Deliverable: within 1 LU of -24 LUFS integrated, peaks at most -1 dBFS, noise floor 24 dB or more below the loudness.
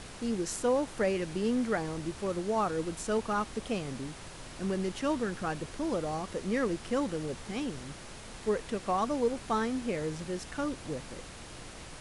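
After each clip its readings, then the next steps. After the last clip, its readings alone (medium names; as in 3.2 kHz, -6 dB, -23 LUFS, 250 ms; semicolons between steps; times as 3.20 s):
noise floor -46 dBFS; noise floor target -57 dBFS; loudness -33.0 LUFS; peak level -17.5 dBFS; loudness target -24.0 LUFS
-> noise print and reduce 11 dB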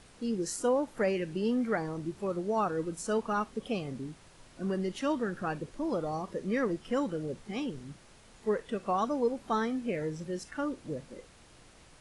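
noise floor -57 dBFS; loudness -33.0 LUFS; peak level -18.0 dBFS; loudness target -24.0 LUFS
-> trim +9 dB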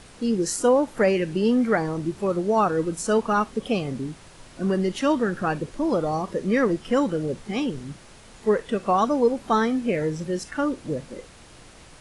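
loudness -24.0 LUFS; peak level -9.0 dBFS; noise floor -48 dBFS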